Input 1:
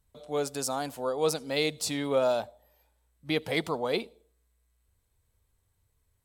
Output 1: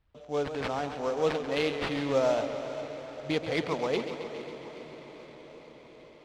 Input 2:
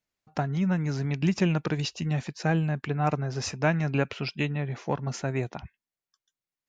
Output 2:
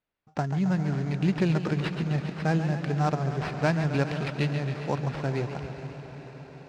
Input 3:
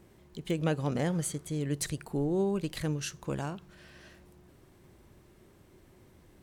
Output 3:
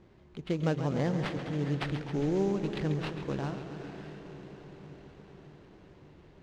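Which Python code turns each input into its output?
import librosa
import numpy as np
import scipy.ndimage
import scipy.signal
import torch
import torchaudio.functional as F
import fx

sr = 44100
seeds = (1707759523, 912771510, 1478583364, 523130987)

y = fx.echo_diffused(x, sr, ms=473, feedback_pct=71, wet_db=-14)
y = fx.sample_hold(y, sr, seeds[0], rate_hz=6700.0, jitter_pct=20)
y = fx.air_absorb(y, sr, metres=140.0)
y = fx.echo_warbled(y, sr, ms=136, feedback_pct=71, rate_hz=2.8, cents=111, wet_db=-10.0)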